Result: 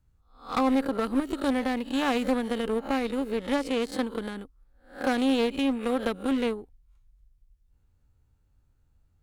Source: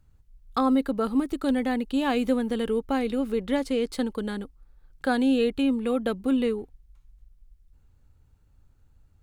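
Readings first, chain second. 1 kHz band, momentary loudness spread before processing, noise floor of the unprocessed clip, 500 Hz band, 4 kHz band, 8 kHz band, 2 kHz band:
+0.5 dB, 9 LU, -60 dBFS, -1.5 dB, +1.5 dB, +1.5 dB, +1.0 dB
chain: reverse spectral sustain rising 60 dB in 0.41 s; Chebyshev shaper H 7 -22 dB, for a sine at -10.5 dBFS; one-sided clip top -24 dBFS

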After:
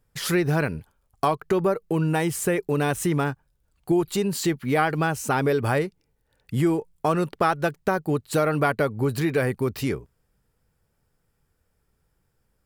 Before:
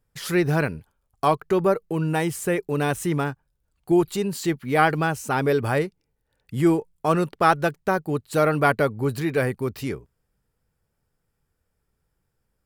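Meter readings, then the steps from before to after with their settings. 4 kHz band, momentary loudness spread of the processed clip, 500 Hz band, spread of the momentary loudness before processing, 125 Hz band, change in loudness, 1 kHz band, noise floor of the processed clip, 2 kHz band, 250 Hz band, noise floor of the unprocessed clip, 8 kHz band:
+1.0 dB, 4 LU, -1.0 dB, 8 LU, 0.0 dB, -1.0 dB, -2.5 dB, -72 dBFS, -1.5 dB, -0.5 dB, -76 dBFS, +3.0 dB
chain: compression 3:1, threshold -24 dBFS, peak gain reduction 9.5 dB; trim +4 dB

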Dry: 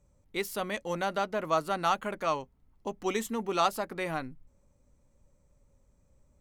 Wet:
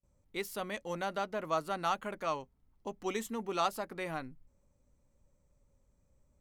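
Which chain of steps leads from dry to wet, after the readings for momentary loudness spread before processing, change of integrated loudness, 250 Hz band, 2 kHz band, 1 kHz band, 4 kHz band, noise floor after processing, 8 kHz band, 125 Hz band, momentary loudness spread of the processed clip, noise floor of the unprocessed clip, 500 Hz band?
10 LU, -5.0 dB, -5.0 dB, -5.0 dB, -5.0 dB, -5.0 dB, -73 dBFS, -5.0 dB, -5.0 dB, 10 LU, -68 dBFS, -5.0 dB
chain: gate with hold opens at -59 dBFS; trim -5 dB

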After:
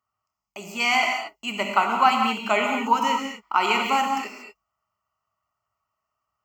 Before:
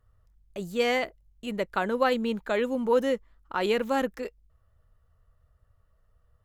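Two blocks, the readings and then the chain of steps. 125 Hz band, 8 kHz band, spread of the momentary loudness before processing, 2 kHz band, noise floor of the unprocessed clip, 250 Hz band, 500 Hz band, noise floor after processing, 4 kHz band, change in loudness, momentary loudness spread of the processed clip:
no reading, +10.5 dB, 14 LU, +8.5 dB, -67 dBFS, 0.0 dB, -4.5 dB, -84 dBFS, +9.5 dB, +6.0 dB, 10 LU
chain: gate -52 dBFS, range -11 dB; high-pass 440 Hz 12 dB/octave; static phaser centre 2.5 kHz, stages 8; in parallel at +2.5 dB: gain riding within 3 dB 0.5 s; on the sum: gated-style reverb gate 260 ms flat, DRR 1.5 dB; trim +4 dB

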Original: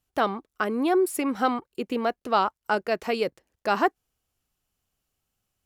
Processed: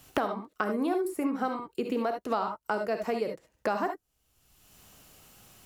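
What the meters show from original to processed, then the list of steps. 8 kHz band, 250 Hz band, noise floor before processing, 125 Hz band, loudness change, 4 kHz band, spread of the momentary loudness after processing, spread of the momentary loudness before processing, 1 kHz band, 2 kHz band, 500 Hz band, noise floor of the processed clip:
no reading, -3.5 dB, -84 dBFS, -2.5 dB, -5.0 dB, -9.0 dB, 5 LU, 7 LU, -6.0 dB, -6.5 dB, -4.5 dB, -76 dBFS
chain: gated-style reverb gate 90 ms rising, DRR 4.5 dB; dynamic bell 3.1 kHz, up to -8 dB, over -43 dBFS, Q 1; three bands compressed up and down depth 100%; trim -6 dB

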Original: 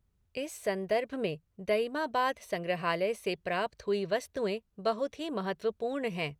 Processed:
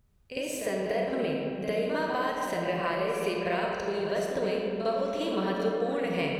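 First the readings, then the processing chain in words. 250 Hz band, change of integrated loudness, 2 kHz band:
+5.0 dB, +3.0 dB, +2.5 dB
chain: compression, threshold -34 dBFS, peak gain reduction 10 dB; reverse echo 53 ms -8.5 dB; algorithmic reverb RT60 2.9 s, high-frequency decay 0.5×, pre-delay 5 ms, DRR -1 dB; trim +5 dB

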